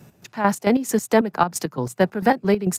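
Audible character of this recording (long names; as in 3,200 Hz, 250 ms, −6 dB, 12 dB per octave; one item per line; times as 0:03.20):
chopped level 4.5 Hz, depth 65%, duty 45%
AC-3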